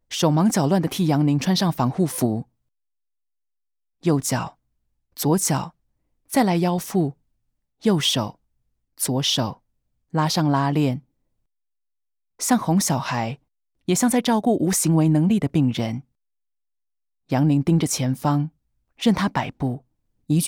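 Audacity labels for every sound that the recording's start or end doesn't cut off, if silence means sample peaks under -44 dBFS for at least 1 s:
4.030000	11.000000	sound
12.390000	16.010000	sound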